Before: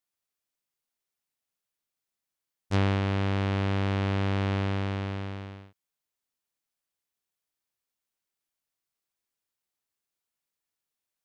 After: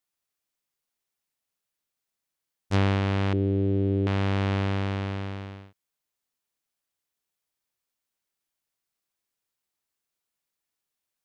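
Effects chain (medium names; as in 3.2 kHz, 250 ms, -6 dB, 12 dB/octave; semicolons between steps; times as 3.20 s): 3.33–4.07 s: FFT filter 240 Hz 0 dB, 350 Hz +11 dB, 990 Hz -24 dB, 3.4 kHz -17 dB, 6.5 kHz -28 dB; trim +2 dB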